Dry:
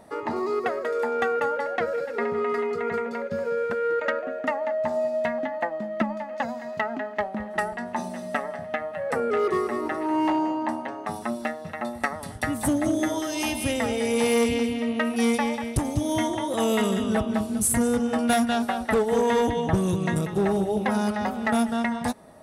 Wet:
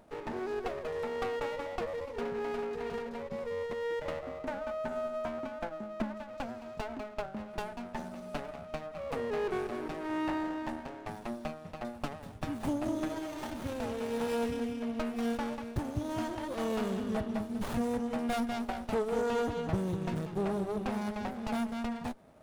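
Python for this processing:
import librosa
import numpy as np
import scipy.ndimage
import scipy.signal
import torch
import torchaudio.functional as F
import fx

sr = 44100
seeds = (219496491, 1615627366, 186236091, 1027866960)

y = fx.spec_erase(x, sr, start_s=3.94, length_s=2.1, low_hz=1800.0, high_hz=5700.0)
y = fx.running_max(y, sr, window=17)
y = y * 10.0 ** (-8.5 / 20.0)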